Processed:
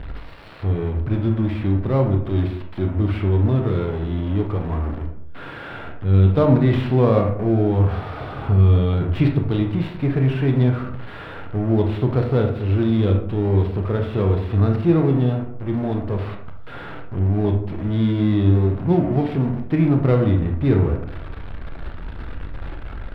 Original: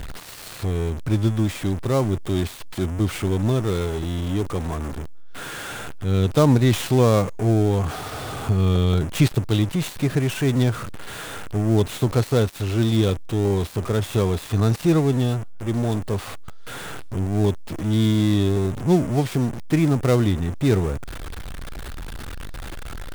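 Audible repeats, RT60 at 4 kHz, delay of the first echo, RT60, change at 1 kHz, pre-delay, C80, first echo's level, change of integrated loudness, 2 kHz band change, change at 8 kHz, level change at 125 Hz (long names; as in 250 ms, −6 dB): no echo audible, 0.35 s, no echo audible, 0.65 s, 0.0 dB, 23 ms, 11.0 dB, no echo audible, +2.0 dB, −2.0 dB, below −25 dB, +3.0 dB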